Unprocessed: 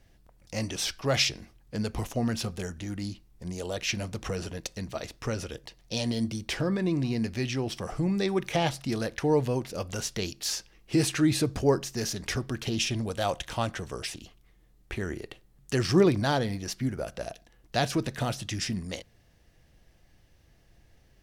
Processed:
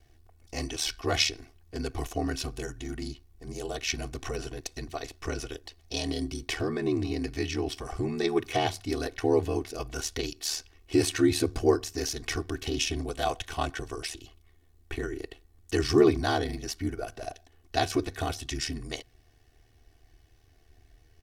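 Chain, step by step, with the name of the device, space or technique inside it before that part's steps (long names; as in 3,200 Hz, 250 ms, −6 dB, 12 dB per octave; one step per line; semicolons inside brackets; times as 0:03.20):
ring-modulated robot voice (ring modulation 38 Hz; comb filter 2.7 ms, depth 91%)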